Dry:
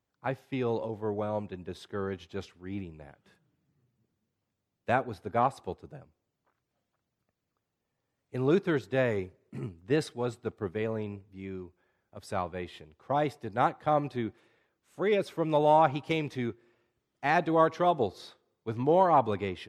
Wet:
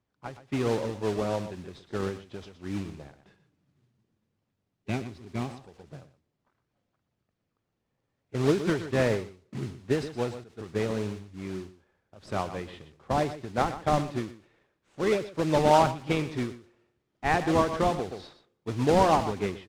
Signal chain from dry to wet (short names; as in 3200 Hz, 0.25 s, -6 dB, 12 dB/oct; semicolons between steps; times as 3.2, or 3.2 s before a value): spectral gain 4.84–5.48, 420–1900 Hz -15 dB; in parallel at -7.5 dB: decimation with a swept rate 40×, swing 100% 3.6 Hz; on the sum: modulation noise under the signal 12 dB; air absorption 90 m; on a send: echo 0.121 s -12.5 dB; on the sum: ending taper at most 130 dB/s; gain +1.5 dB